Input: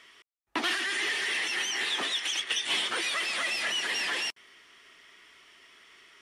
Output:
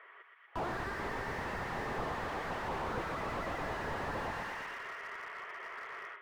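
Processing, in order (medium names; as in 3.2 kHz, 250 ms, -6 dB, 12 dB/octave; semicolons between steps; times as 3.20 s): tracing distortion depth 0.15 ms; peak limiter -28 dBFS, peak gain reduction 10.5 dB; low-pass 1.7 kHz 24 dB/octave; on a send: thinning echo 120 ms, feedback 72%, high-pass 1 kHz, level -4 dB; on the sum: compression, threshold -40 dBFS, peak gain reduction 5.5 dB; steep high-pass 420 Hz 36 dB/octave; level rider gain up to 11 dB; dynamic bell 930 Hz, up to +5 dB, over -53 dBFS, Q 1.7; slew-rate limiter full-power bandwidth 8 Hz; trim +5.5 dB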